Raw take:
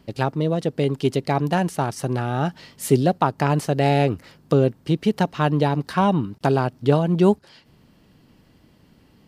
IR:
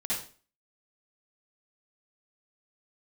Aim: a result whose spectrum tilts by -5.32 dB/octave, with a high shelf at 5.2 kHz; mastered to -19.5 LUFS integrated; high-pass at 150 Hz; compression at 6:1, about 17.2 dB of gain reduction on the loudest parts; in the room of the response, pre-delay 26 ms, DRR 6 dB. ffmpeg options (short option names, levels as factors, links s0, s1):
-filter_complex "[0:a]highpass=150,highshelf=f=5200:g=4,acompressor=threshold=0.0282:ratio=6,asplit=2[s0][s1];[1:a]atrim=start_sample=2205,adelay=26[s2];[s1][s2]afir=irnorm=-1:irlink=0,volume=0.251[s3];[s0][s3]amix=inputs=2:normalize=0,volume=5.62"